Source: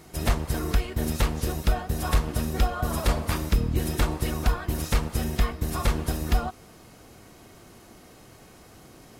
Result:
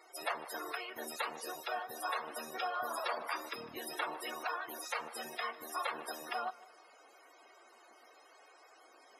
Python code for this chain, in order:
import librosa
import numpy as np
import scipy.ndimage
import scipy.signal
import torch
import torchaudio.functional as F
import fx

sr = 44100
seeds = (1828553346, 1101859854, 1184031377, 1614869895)

p1 = scipy.signal.sosfilt(scipy.signal.butter(2, 700.0, 'highpass', fs=sr, output='sos'), x)
p2 = fx.spec_topn(p1, sr, count=64)
p3 = p2 + fx.echo_feedback(p2, sr, ms=153, feedback_pct=39, wet_db=-21.0, dry=0)
y = p3 * librosa.db_to_amplitude(-3.0)